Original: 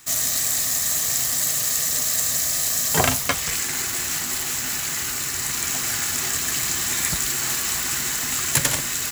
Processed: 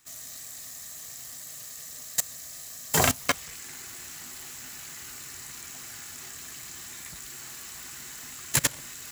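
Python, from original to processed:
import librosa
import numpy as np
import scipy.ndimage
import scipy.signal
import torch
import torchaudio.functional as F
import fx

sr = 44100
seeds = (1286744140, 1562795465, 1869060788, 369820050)

y = fx.level_steps(x, sr, step_db=21)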